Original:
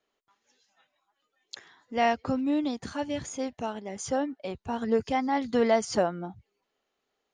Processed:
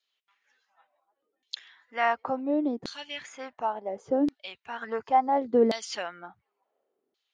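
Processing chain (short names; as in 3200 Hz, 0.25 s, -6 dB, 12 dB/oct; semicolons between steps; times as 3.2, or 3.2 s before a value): LFO band-pass saw down 0.7 Hz 290–4400 Hz; gain +8.5 dB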